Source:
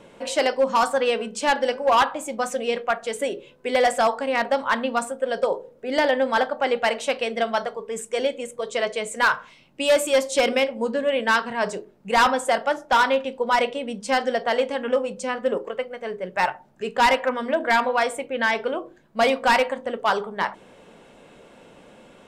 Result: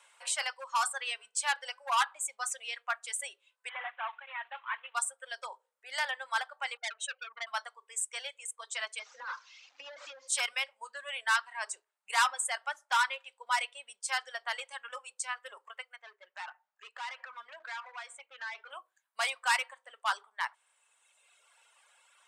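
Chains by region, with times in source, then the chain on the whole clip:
3.69–4.95 CVSD 16 kbps + HPF 840 Hz 6 dB/oct
6.77–7.47 spectral contrast raised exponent 2 + HPF 250 Hz 6 dB/oct + core saturation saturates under 2500 Hz
8.99–10.28 delta modulation 32 kbps, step -38 dBFS + small resonant body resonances 270/510 Hz, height 17 dB, ringing for 0.1 s + compressor 12:1, threshold -19 dBFS
15.96–18.71 compressor, threshold -23 dBFS + hard clip -26 dBFS + air absorption 140 m
whole clip: HPF 990 Hz 24 dB/oct; reverb removal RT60 1.7 s; bell 8600 Hz +11 dB 0.57 oct; gain -6.5 dB

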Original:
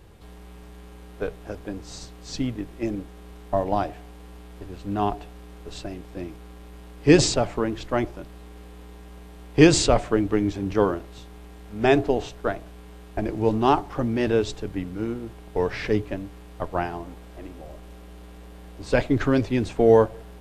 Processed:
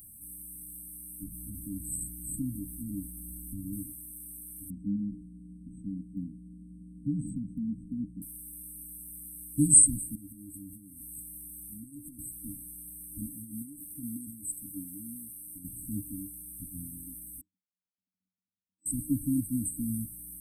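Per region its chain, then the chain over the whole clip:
1.23–3.73 low shelf 330 Hz +11 dB + compressor 2.5:1, threshold -25 dBFS
4.7–8.22 LPF 4000 Hz 24 dB/oct + bell 200 Hz +13.5 dB 0.72 oct + compressor 3:1, threshold -21 dBFS
10.15–12.19 dynamic EQ 8000 Hz, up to +5 dB, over -48 dBFS, Q 0.72 + compressor, threshold -34 dBFS
13.28–15.65 low shelf 220 Hz -10.5 dB + compressor 12:1, threshold -25 dBFS
17.41–18.86 sine-wave speech + octave resonator F#, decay 0.37 s
whole clip: tilt +3.5 dB/oct; FFT band-reject 310–8000 Hz; high shelf 4400 Hz +10 dB; gain +1 dB

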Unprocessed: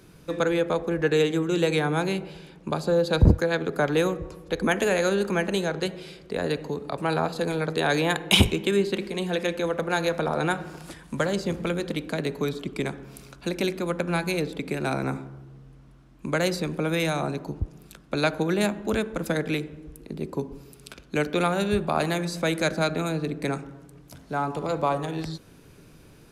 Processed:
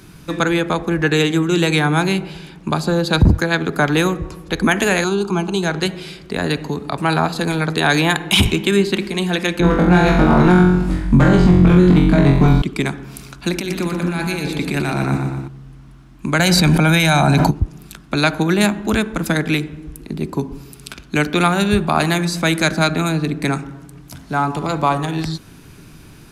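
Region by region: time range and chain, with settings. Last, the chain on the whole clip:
5.04–5.63 air absorption 54 m + fixed phaser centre 370 Hz, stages 8
9.6–12.62 tilt -4 dB/oct + hard clip -14 dBFS + flutter echo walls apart 3.8 m, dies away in 0.63 s
13.53–15.48 negative-ratio compressor -30 dBFS + feedback echo 0.12 s, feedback 48%, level -6 dB
16.39–17.51 comb 1.3 ms, depth 48% + fast leveller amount 100%
whole clip: bell 510 Hz -10.5 dB 0.62 oct; maximiser +12.5 dB; gain -2 dB

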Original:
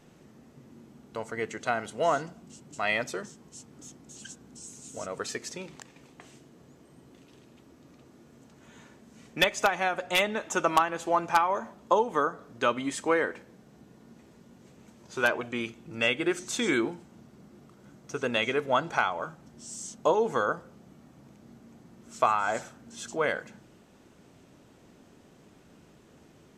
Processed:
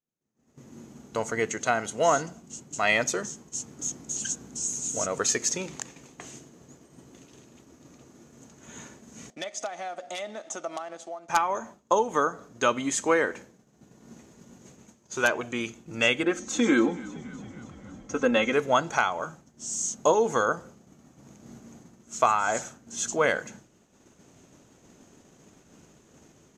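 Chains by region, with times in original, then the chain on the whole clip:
9.3–11.29 G.711 law mismatch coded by A + compressor 2.5:1, threshold -44 dBFS + speaker cabinet 270–9100 Hz, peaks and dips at 430 Hz -7 dB, 670 Hz +8 dB, 980 Hz -10 dB, 1600 Hz -7 dB, 2600 Hz -8 dB, 6800 Hz -9 dB
16.23–18.53 LPF 1600 Hz 6 dB/oct + comb 3.8 ms, depth 77% + frequency-shifting echo 0.281 s, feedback 65%, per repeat -40 Hz, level -20 dB
whole clip: bell 6600 Hz +13 dB 0.32 oct; AGC gain up to 14 dB; expander -35 dBFS; gain -7 dB

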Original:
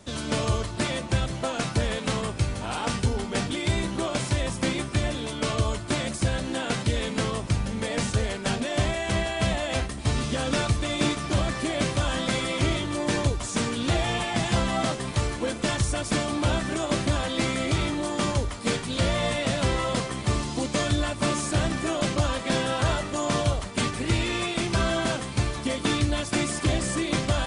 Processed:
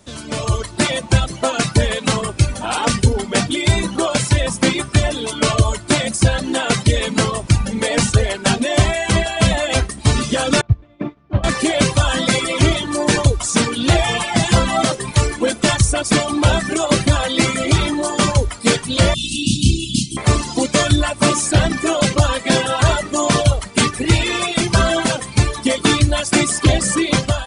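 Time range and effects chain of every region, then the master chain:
10.61–11.44 tape spacing loss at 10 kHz 44 dB + upward expander 2.5:1, over -33 dBFS
19.14–20.17 Chebyshev band-stop 330–2700 Hz, order 5 + doubler 31 ms -3 dB
whole clip: reverb removal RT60 1.6 s; high shelf 9100 Hz +6.5 dB; AGC gain up to 14 dB

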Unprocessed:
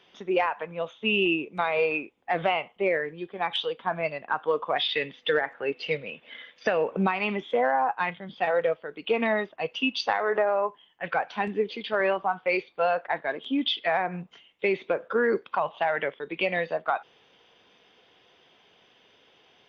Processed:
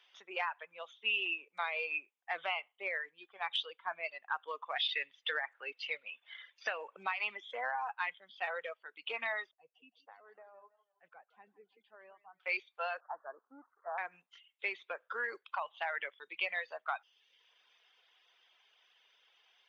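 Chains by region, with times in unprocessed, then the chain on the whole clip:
9.51–12.4 band-pass 120 Hz, Q 1.3 + warbling echo 0.163 s, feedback 40%, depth 111 cents, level -13 dB
13–13.98 switching spikes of -20.5 dBFS + steep low-pass 1400 Hz 72 dB/oct + low shelf 250 Hz -5.5 dB
whole clip: HPF 1100 Hz 12 dB/oct; reverb removal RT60 0.69 s; gain -5.5 dB

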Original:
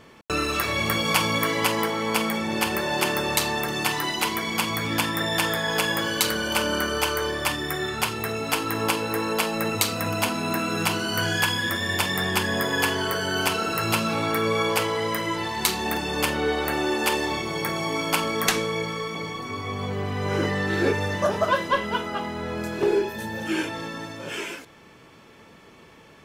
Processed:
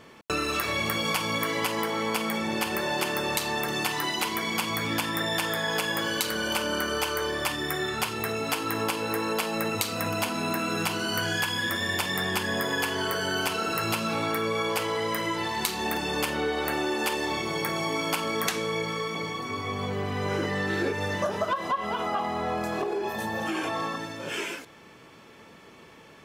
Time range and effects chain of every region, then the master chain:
21.53–23.96 notch 1500 Hz, Q 29 + compressor 10:1, threshold -25 dBFS + small resonant body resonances 750/1100 Hz, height 17 dB
whole clip: low shelf 96 Hz -6.5 dB; compressor, threshold -24 dBFS

